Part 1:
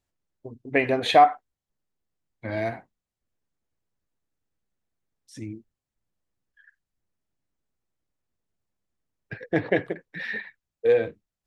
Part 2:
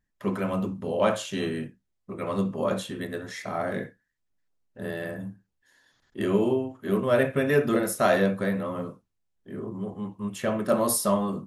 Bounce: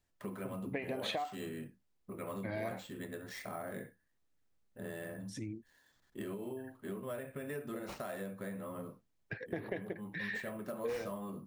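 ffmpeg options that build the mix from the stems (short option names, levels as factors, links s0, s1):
-filter_complex "[0:a]acompressor=threshold=0.0562:ratio=6,volume=1[s0];[1:a]alimiter=limit=0.106:level=0:latency=1:release=435,acrusher=samples=4:mix=1:aa=0.000001,volume=0.473[s1];[s0][s1]amix=inputs=2:normalize=0,acompressor=threshold=0.00708:ratio=2"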